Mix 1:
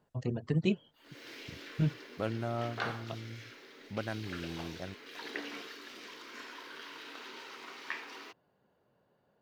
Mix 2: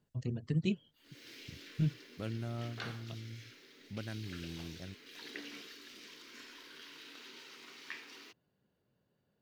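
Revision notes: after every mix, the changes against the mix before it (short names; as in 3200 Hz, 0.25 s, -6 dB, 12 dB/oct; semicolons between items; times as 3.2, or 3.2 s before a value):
master: add bell 830 Hz -13 dB 2.3 oct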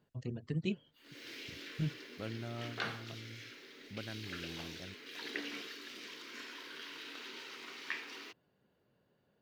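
background +6.0 dB; master: add tone controls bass -5 dB, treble -5 dB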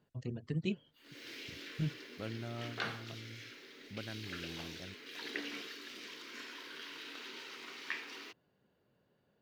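none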